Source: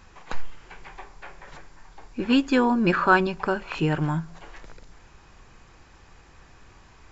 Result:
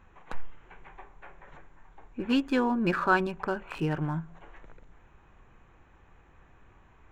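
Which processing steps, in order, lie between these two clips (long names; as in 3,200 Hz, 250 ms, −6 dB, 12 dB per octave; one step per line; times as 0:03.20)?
adaptive Wiener filter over 9 samples
level −5.5 dB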